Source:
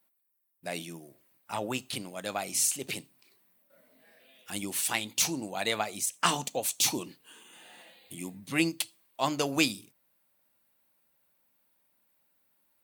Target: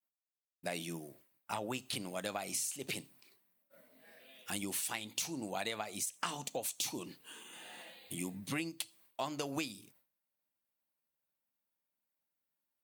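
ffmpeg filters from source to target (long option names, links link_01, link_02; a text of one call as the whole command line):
ffmpeg -i in.wav -af "agate=range=-33dB:threshold=-59dB:ratio=3:detection=peak,acompressor=threshold=-36dB:ratio=10,volume=1.5dB" out.wav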